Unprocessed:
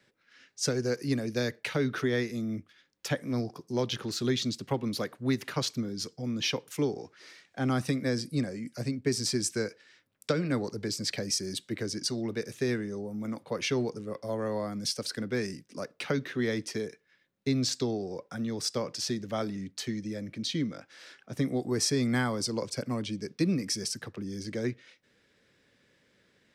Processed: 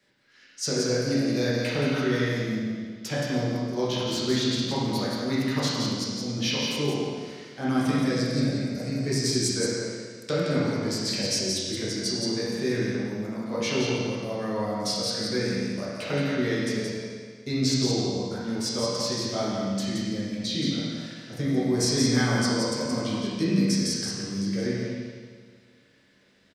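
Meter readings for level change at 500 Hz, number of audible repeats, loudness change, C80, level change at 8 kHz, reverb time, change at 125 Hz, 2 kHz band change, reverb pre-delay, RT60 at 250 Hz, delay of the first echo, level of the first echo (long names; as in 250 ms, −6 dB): +4.5 dB, 1, +5.0 dB, −1.5 dB, +4.5 dB, 1.7 s, +5.5 dB, +4.5 dB, 8 ms, 1.7 s, 173 ms, −4.5 dB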